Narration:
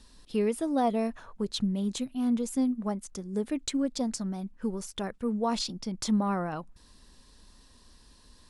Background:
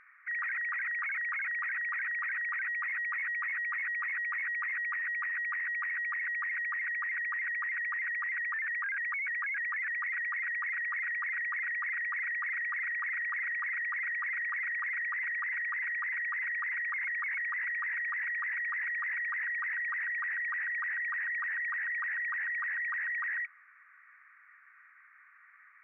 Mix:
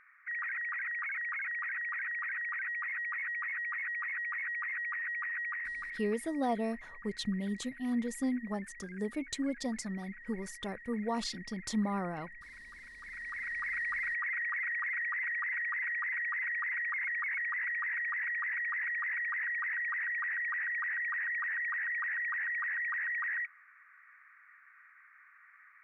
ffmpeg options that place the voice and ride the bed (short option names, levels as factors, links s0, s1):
-filter_complex "[0:a]adelay=5650,volume=0.531[s0];[1:a]volume=5.31,afade=t=out:st=5.46:d=0.78:silence=0.177828,afade=t=in:st=12.98:d=0.82:silence=0.141254[s1];[s0][s1]amix=inputs=2:normalize=0"